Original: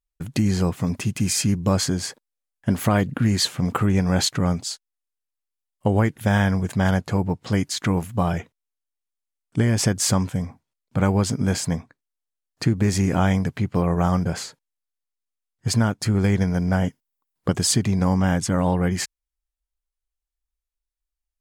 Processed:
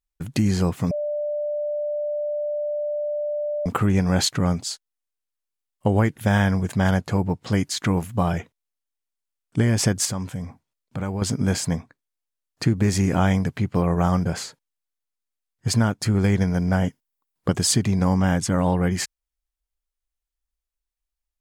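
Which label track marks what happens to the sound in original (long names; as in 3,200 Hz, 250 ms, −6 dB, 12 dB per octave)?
0.910000	3.660000	beep over 592 Hz −23 dBFS
10.050000	11.220000	downward compressor 2 to 1, threshold −30 dBFS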